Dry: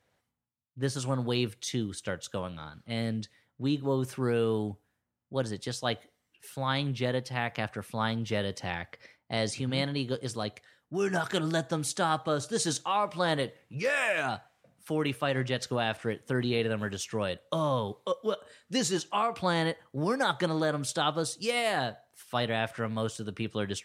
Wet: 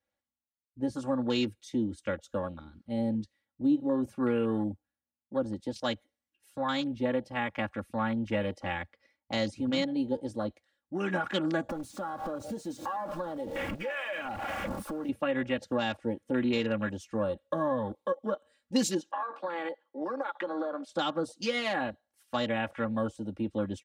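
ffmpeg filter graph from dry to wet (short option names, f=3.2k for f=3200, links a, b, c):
-filter_complex "[0:a]asettb=1/sr,asplit=3[a][b][c];[a]atrim=end=11.694[d];[b]atrim=start=11.69:end=15.09,asetpts=PTS-STARTPTS,afade=t=in:d=0.004:c=qsin,afade=t=out:st=3.396:d=0.004:c=qsin,aeval=exprs='val(0)+0.5*0.0376*sgn(val(0))':c=same,acompressor=threshold=-34dB:ratio=8:attack=3.2:release=140:knee=1:detection=peak[e];[c]atrim=start=15.086[f];[d][e]acrossfade=d=0.004:c1=hsin:c2=qsin[g];[g][f]acrossfade=d=0.004:c1=qsin:c2=hsin,asettb=1/sr,asplit=3[h][i][j];[h]atrim=end=19.114[k];[i]atrim=start=19.11:end=20.92,asetpts=PTS-STARTPTS,afade=t=in:d=0.004:c=qsin,afade=t=out:st=1.806:d=0.004:c=qsin,acrossover=split=310 5500:gain=0.0708 1 0.2[l][m][n];[l][m][n]amix=inputs=3:normalize=0,acompressor=threshold=-31dB:ratio=8:attack=3.2:release=140:knee=1:detection=peak,highpass=f=130:w=0.5412,highpass=f=130:w=1.3066[o];[j]atrim=start=20.916[p];[k][o]acrossfade=d=0.004:c1=hsin:c2=qsin[q];[q][p]acrossfade=d=0.004:c1=qsin:c2=hsin,afwtdn=0.0126,aecho=1:1:3.6:0.86,acrossover=split=300[r][s];[s]acompressor=threshold=-28dB:ratio=4[t];[r][t]amix=inputs=2:normalize=0"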